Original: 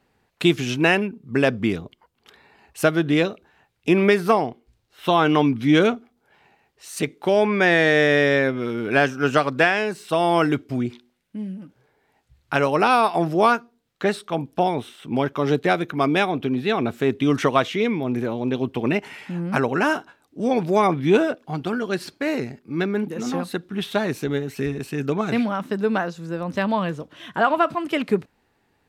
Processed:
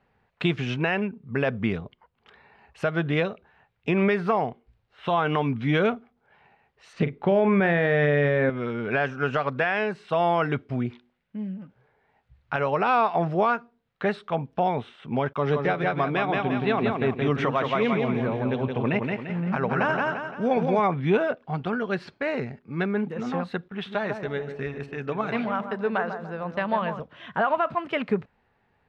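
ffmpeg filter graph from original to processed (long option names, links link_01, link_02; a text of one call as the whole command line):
ffmpeg -i in.wav -filter_complex "[0:a]asettb=1/sr,asplit=3[link_01][link_02][link_03];[link_01]atrim=end=6.934[link_04];[link_02]atrim=start=6.93:end=8.5,asetpts=PTS-STARTPTS,afade=type=in:duration=0.004:curve=qsin,afade=type=out:start_time=1.566:duration=0.004:curve=qsin,lowpass=4000,lowshelf=frequency=390:gain=10,asplit=2[link_05][link_06];[link_06]adelay=41,volume=-11dB[link_07];[link_05][link_07]amix=inputs=2:normalize=0,atrim=end_sample=69237[link_08];[link_03]atrim=start=8.496[link_09];[link_04][link_08]acrossfade=duration=0.004:curve1=hsin:curve2=qsin[link_10];[link_10][link_09]acrossfade=duration=0.004:curve1=qsin:curve2=hsin,asettb=1/sr,asplit=3[link_11][link_12][link_13];[link_11]atrim=end=15.334[link_14];[link_12]atrim=start=15.33:end=20.8,asetpts=PTS-STARTPTS,afade=type=in:duration=0.004:curve=qsin,afade=type=out:start_time=5.466:duration=0.004:curve=qsin,agate=range=-33dB:threshold=-35dB:ratio=3:release=100:detection=peak,aecho=1:1:172|344|516|688|860:0.596|0.256|0.11|0.0474|0.0204,atrim=end_sample=241227[link_15];[link_13]atrim=start=20.796[link_16];[link_14][link_15]acrossfade=duration=0.004:curve1=hsin:curve2=qsin[link_17];[link_17][link_16]acrossfade=duration=0.004:curve1=qsin:curve2=hsin,asettb=1/sr,asplit=3[link_18][link_19][link_20];[link_18]atrim=end=23.684[link_21];[link_19]atrim=start=23.68:end=27,asetpts=PTS-STARTPTS,afade=type=in:duration=0.004:curve=qsin,afade=type=out:start_time=3.316:duration=0.004:curve=qsin,agate=range=-12dB:threshold=-37dB:ratio=16:release=100:detection=peak,lowshelf=frequency=280:gain=-8.5,asplit=2[link_22][link_23];[link_23]adelay=146,lowpass=frequency=1100:poles=1,volume=-7dB,asplit=2[link_24][link_25];[link_25]adelay=146,lowpass=frequency=1100:poles=1,volume=0.47,asplit=2[link_26][link_27];[link_27]adelay=146,lowpass=frequency=1100:poles=1,volume=0.47,asplit=2[link_28][link_29];[link_29]adelay=146,lowpass=frequency=1100:poles=1,volume=0.47,asplit=2[link_30][link_31];[link_31]adelay=146,lowpass=frequency=1100:poles=1,volume=0.47,asplit=2[link_32][link_33];[link_33]adelay=146,lowpass=frequency=1100:poles=1,volume=0.47[link_34];[link_22][link_24][link_26][link_28][link_30][link_32][link_34]amix=inputs=7:normalize=0,atrim=end_sample=146412[link_35];[link_20]atrim=start=26.996[link_36];[link_21][link_35]acrossfade=duration=0.004:curve1=hsin:curve2=qsin[link_37];[link_37][link_36]acrossfade=duration=0.004:curve1=qsin:curve2=hsin,lowpass=2500,equalizer=frequency=310:width=2.9:gain=-10.5,alimiter=limit=-13dB:level=0:latency=1:release=97" out.wav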